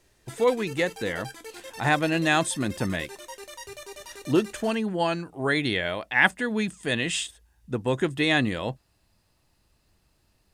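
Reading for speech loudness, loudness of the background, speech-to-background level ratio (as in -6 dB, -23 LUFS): -26.0 LUFS, -41.5 LUFS, 15.5 dB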